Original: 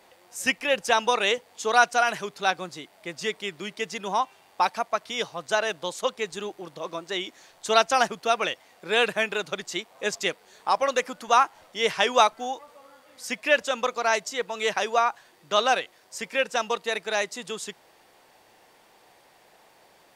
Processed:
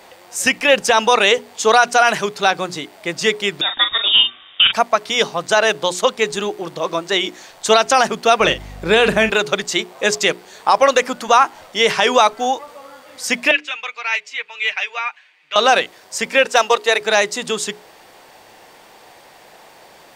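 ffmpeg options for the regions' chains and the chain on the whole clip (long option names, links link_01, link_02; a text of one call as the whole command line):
ffmpeg -i in.wav -filter_complex "[0:a]asettb=1/sr,asplit=3[link_01][link_02][link_03];[link_01]atrim=end=3.614[link_04];[link_02]atrim=start=3.61:end=4.73,asetpts=PTS-STARTPTS,afade=type=in:duration=0.004:curve=qsin,afade=type=out:start_time=1.116:duration=0.004:curve=qsin,equalizer=frequency=270:width_type=o:width=0.55:gain=13.5,asplit=2[link_05][link_06];[link_06]adelay=41,volume=-8dB[link_07];[link_05][link_07]amix=inputs=2:normalize=0,atrim=end_sample=49392,lowpass=frequency=3300:width_type=q:width=0.5098,lowpass=frequency=3300:width_type=q:width=0.6013,lowpass=frequency=3300:width_type=q:width=0.9,lowpass=frequency=3300:width_type=q:width=2.563,afreqshift=-3900[link_08];[link_03]atrim=start=4.726[link_09];[link_04][link_08]acrossfade=duration=0.004:curve1=hsin:curve2=qsin[link_10];[link_10][link_09]acrossfade=duration=0.004:curve1=qsin:curve2=hsin,asettb=1/sr,asplit=3[link_11][link_12][link_13];[link_11]atrim=end=8.404[link_14];[link_12]atrim=start=8.4:end=9.3,asetpts=PTS-STARTPTS,afade=type=in:duration=0.004:curve=qsin,afade=type=out:start_time=0.896:duration=0.004:curve=qsin,lowshelf=frequency=300:gain=10,aeval=exprs='val(0)+0.00447*(sin(2*PI*50*n/s)+sin(2*PI*2*50*n/s)/2+sin(2*PI*3*50*n/s)/3+sin(2*PI*4*50*n/s)/4+sin(2*PI*5*50*n/s)/5)':channel_layout=same,asplit=2[link_15][link_16];[link_16]adelay=41,volume=-13.5dB[link_17];[link_15][link_17]amix=inputs=2:normalize=0,atrim=end_sample=39690[link_18];[link_13]atrim=start=9.296[link_19];[link_14][link_18]acrossfade=duration=0.004:curve1=hsin:curve2=qsin[link_20];[link_20][link_19]acrossfade=duration=0.004:curve1=qsin:curve2=hsin,asettb=1/sr,asplit=3[link_21][link_22][link_23];[link_21]atrim=end=13.514[link_24];[link_22]atrim=start=13.51:end=15.56,asetpts=PTS-STARTPTS,afade=type=in:duration=0.004:curve=qsin,afade=type=out:start_time=2.046:duration=0.004:curve=qsin,bandpass=frequency=2400:width_type=q:width=4.1,aecho=1:1:6.6:0.63,atrim=end_sample=90405[link_25];[link_23]atrim=start=15.556[link_26];[link_24][link_25]acrossfade=duration=0.004:curve1=hsin:curve2=qsin[link_27];[link_27][link_26]acrossfade=duration=0.004:curve1=qsin:curve2=hsin,asettb=1/sr,asplit=3[link_28][link_29][link_30];[link_28]atrim=end=16.454[link_31];[link_29]atrim=start=16.45:end=17.01,asetpts=PTS-STARTPTS,afade=type=in:duration=0.004:curve=qsin,afade=type=out:start_time=0.556:duration=0.004:curve=qsin,highpass=frequency=290:width=0.5412,highpass=frequency=290:width=1.3066,volume=16dB,asoftclip=hard,volume=-16dB[link_32];[link_30]atrim=start=17.006[link_33];[link_31][link_32]acrossfade=duration=0.004:curve1=hsin:curve2=qsin[link_34];[link_34][link_33]acrossfade=duration=0.004:curve1=qsin:curve2=hsin,equalizer=frequency=11000:width=6.2:gain=-9,bandreject=frequency=60:width_type=h:width=6,bandreject=frequency=120:width_type=h:width=6,bandreject=frequency=180:width_type=h:width=6,bandreject=frequency=240:width_type=h:width=6,bandreject=frequency=300:width_type=h:width=6,bandreject=frequency=360:width_type=h:width=6,bandreject=frequency=420:width_type=h:width=6,alimiter=level_in=13.5dB:limit=-1dB:release=50:level=0:latency=1,volume=-1dB" out.wav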